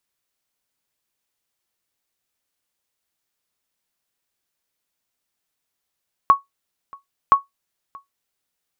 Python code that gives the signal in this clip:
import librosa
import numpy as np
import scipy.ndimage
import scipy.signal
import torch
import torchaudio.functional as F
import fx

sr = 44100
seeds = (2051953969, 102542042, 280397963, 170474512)

y = fx.sonar_ping(sr, hz=1110.0, decay_s=0.15, every_s=1.02, pings=2, echo_s=0.63, echo_db=-26.5, level_db=-3.5)